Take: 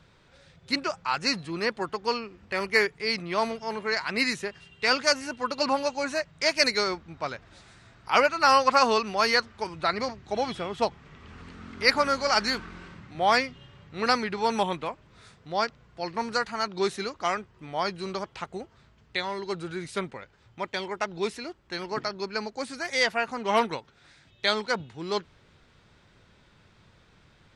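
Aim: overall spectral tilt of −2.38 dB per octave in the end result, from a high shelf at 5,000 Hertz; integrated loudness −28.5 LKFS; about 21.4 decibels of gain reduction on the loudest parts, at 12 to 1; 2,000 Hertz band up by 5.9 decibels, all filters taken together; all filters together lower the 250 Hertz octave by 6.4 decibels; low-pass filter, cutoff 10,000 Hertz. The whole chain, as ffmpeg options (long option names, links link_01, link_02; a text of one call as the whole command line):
ffmpeg -i in.wav -af "lowpass=10000,equalizer=frequency=250:width_type=o:gain=-8.5,equalizer=frequency=2000:width_type=o:gain=6,highshelf=frequency=5000:gain=8,acompressor=threshold=-33dB:ratio=12,volume=9.5dB" out.wav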